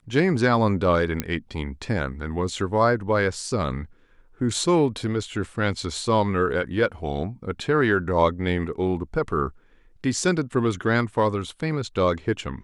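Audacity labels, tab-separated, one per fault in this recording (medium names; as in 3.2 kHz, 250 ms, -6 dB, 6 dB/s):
1.200000	1.200000	pop -9 dBFS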